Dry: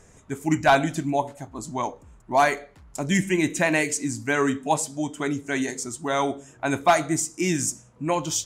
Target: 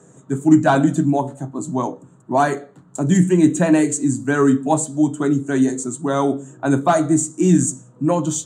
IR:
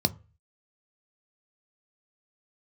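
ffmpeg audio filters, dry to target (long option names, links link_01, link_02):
-filter_complex "[0:a]acontrast=68[link_01];[1:a]atrim=start_sample=2205,asetrate=74970,aresample=44100[link_02];[link_01][link_02]afir=irnorm=-1:irlink=0,volume=-11.5dB"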